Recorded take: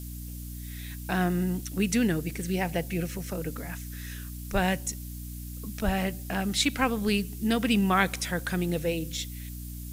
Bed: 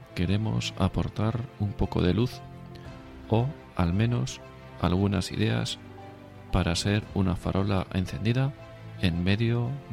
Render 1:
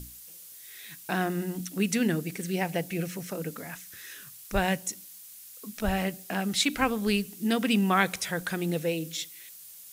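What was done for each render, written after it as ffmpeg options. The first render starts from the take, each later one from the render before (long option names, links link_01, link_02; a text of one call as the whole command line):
ffmpeg -i in.wav -af "bandreject=frequency=60:width_type=h:width=6,bandreject=frequency=120:width_type=h:width=6,bandreject=frequency=180:width_type=h:width=6,bandreject=frequency=240:width_type=h:width=6,bandreject=frequency=300:width_type=h:width=6" out.wav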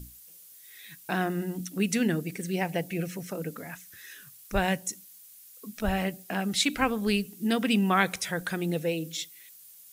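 ffmpeg -i in.wav -af "afftdn=noise_reduction=6:noise_floor=-48" out.wav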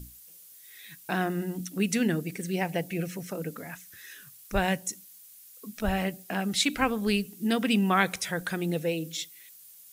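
ffmpeg -i in.wav -af anull out.wav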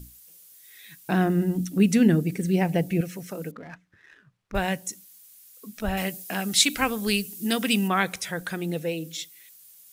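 ffmpeg -i in.wav -filter_complex "[0:a]asettb=1/sr,asplit=3[link_01][link_02][link_03];[link_01]atrim=end=1.074[link_04];[link_02]atrim=start=1.07:end=3.01,asetpts=PTS-STARTPTS,afade=type=in:duration=0.004:curve=qsin,afade=type=out:start_time=1.936:duration=0.004:curve=qsin,lowshelf=frequency=440:gain=10.5[link_05];[link_03]atrim=start=3.006[link_06];[link_04][link_05]acrossfade=duration=0.004:curve1=hsin:curve2=qsin[link_07];[link_07][link_06]acrossfade=duration=0.004:curve1=qsin:curve2=hsin,asettb=1/sr,asplit=3[link_08][link_09][link_10];[link_08]atrim=end=3.514[link_11];[link_09]atrim=start=3.51:end=4.55,asetpts=PTS-STARTPTS,afade=type=in:duration=0.004:curve=qsin,afade=type=out:start_time=1.036:duration=0.004:curve=qsin,adynamicsmooth=sensitivity=7.5:basefreq=1100[link_12];[link_10]atrim=start=4.546[link_13];[link_11][link_12]acrossfade=duration=0.004:curve1=hsin:curve2=qsin[link_14];[link_14][link_13]acrossfade=duration=0.004:curve1=qsin:curve2=hsin,asettb=1/sr,asplit=3[link_15][link_16][link_17];[link_15]atrim=end=5.974[link_18];[link_16]atrim=start=5.97:end=7.88,asetpts=PTS-STARTPTS,afade=type=in:duration=0.004:curve=qsin,afade=type=out:start_time=1.906:duration=0.004:curve=qsin,highshelf=frequency=3200:gain=10.5[link_19];[link_17]atrim=start=7.876[link_20];[link_18][link_19]acrossfade=duration=0.004:curve1=hsin:curve2=qsin[link_21];[link_21][link_20]acrossfade=duration=0.004:curve1=qsin:curve2=hsin" out.wav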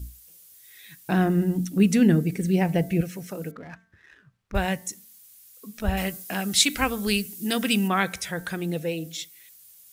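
ffmpeg -i in.wav -af "equalizer=frequency=62:width=1.3:gain=11,bandreject=frequency=224.2:width_type=h:width=4,bandreject=frequency=448.4:width_type=h:width=4,bandreject=frequency=672.6:width_type=h:width=4,bandreject=frequency=896.8:width_type=h:width=4,bandreject=frequency=1121:width_type=h:width=4,bandreject=frequency=1345.2:width_type=h:width=4,bandreject=frequency=1569.4:width_type=h:width=4,bandreject=frequency=1793.6:width_type=h:width=4,bandreject=frequency=2017.8:width_type=h:width=4,bandreject=frequency=2242:width_type=h:width=4" out.wav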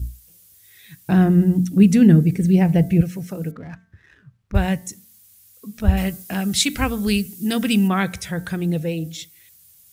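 ffmpeg -i in.wav -af "equalizer=frequency=93:width=0.57:gain=13.5" out.wav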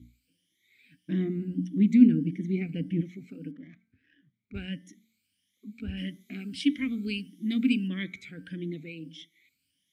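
ffmpeg -i in.wav -filter_complex "[0:a]afftfilt=real='re*pow(10,13/40*sin(2*PI*(1.2*log(max(b,1)*sr/1024/100)/log(2)-(1.6)*(pts-256)/sr)))':imag='im*pow(10,13/40*sin(2*PI*(1.2*log(max(b,1)*sr/1024/100)/log(2)-(1.6)*(pts-256)/sr)))':win_size=1024:overlap=0.75,asplit=3[link_01][link_02][link_03];[link_01]bandpass=frequency=270:width_type=q:width=8,volume=0dB[link_04];[link_02]bandpass=frequency=2290:width_type=q:width=8,volume=-6dB[link_05];[link_03]bandpass=frequency=3010:width_type=q:width=8,volume=-9dB[link_06];[link_04][link_05][link_06]amix=inputs=3:normalize=0" out.wav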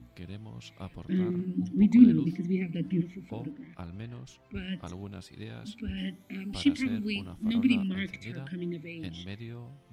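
ffmpeg -i in.wav -i bed.wav -filter_complex "[1:a]volume=-16.5dB[link_01];[0:a][link_01]amix=inputs=2:normalize=0" out.wav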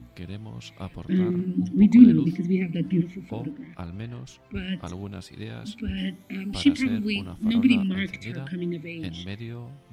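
ffmpeg -i in.wav -af "volume=5.5dB,alimiter=limit=-2dB:level=0:latency=1" out.wav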